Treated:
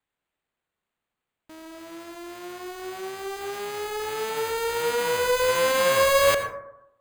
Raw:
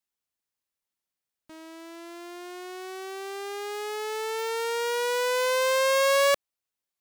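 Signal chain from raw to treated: sample-and-hold 8×; plate-style reverb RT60 0.82 s, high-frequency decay 0.3×, pre-delay 75 ms, DRR 7 dB; gain +1.5 dB

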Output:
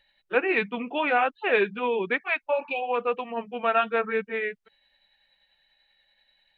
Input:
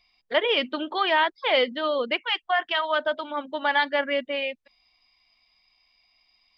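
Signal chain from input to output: delay-line pitch shifter -4 st; spectral repair 2.54–2.84, 870–2300 Hz both

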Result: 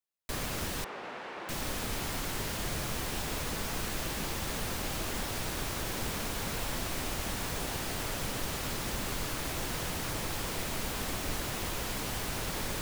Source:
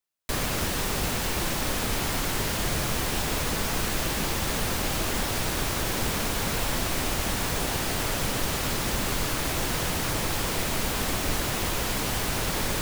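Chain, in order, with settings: 0.84–1.49 BPF 410–2000 Hz; gain -7.5 dB

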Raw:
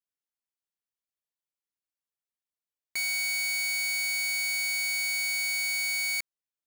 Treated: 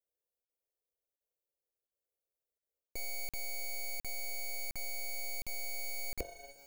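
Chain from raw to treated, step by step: fixed phaser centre 520 Hz, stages 4; de-hum 45.92 Hz, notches 25; on a send: tape echo 0.666 s, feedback 66%, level -18.5 dB, low-pass 1400 Hz; on the sum: sample leveller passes 3; bell 74 Hz +7 dB 2.4 oct; soft clip -28.5 dBFS, distortion -15 dB; reverse; compressor 6:1, threshold -41 dBFS, peak gain reduction 9.5 dB; reverse; graphic EQ 125/500/1000/2000/4000/8000 Hz -10/+12/-5/-10/-12/-5 dB; crackling interface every 0.71 s, samples 2048, zero, from 0.45; gain +8.5 dB

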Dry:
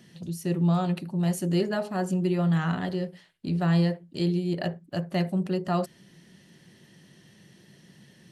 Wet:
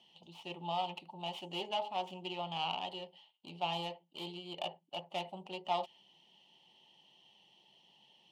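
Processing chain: tracing distortion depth 0.48 ms; double band-pass 1600 Hz, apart 1.8 oct; dynamic EQ 1900 Hz, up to +4 dB, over -59 dBFS, Q 1.1; gain +4 dB

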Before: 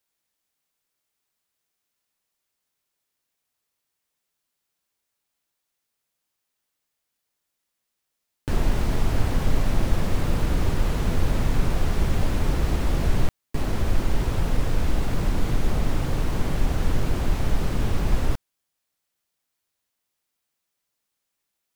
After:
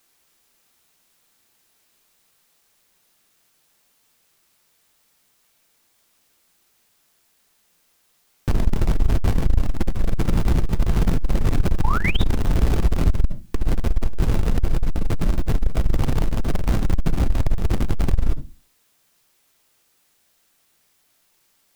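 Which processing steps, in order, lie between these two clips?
low shelf 370 Hz +7.5 dB; in parallel at -3 dB: Schmitt trigger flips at -30.5 dBFS; on the sum: requantised 10-bit, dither triangular; painted sound rise, 11.83–12.21, 800–3900 Hz -18 dBFS; on a send at -9.5 dB: reverb RT60 0.25 s, pre-delay 3 ms; on the sum: core saturation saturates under 81 Hz; gain -4 dB

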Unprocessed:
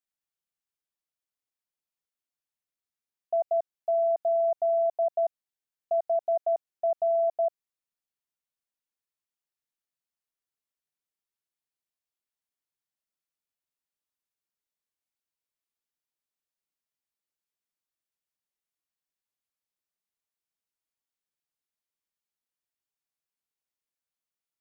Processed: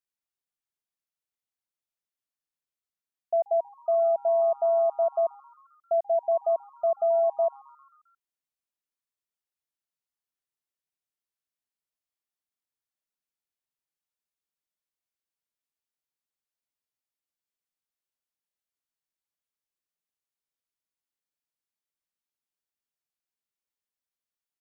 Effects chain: frequency-shifting echo 0.133 s, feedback 63%, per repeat +140 Hz, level -22.5 dB; upward expander 1.5:1, over -34 dBFS; gain +2 dB

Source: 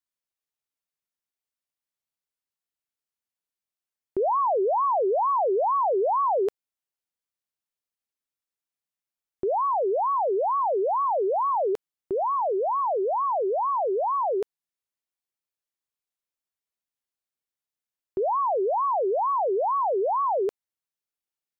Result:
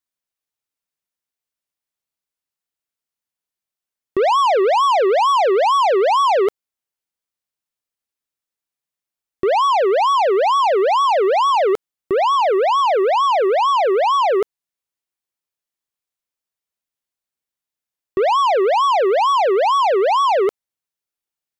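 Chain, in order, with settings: sample leveller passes 2; gain +7 dB

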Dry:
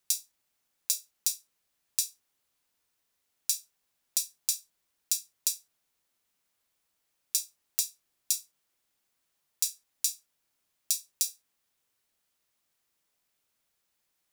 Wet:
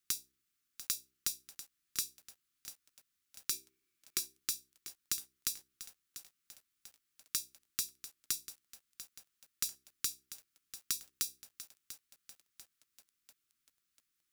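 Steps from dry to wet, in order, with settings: one-sided fold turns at -14.5 dBFS; dynamic EQ 7300 Hz, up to -5 dB, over -44 dBFS, Q 1.5; Chebyshev band-stop 370–1200 Hz, order 3; de-hum 65.2 Hz, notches 6; 3.51–4.38 small resonant body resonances 380/2300 Hz, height 13 dB -> 9 dB, ringing for 20 ms; lo-fi delay 0.693 s, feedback 55%, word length 7-bit, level -12.5 dB; gain -4.5 dB

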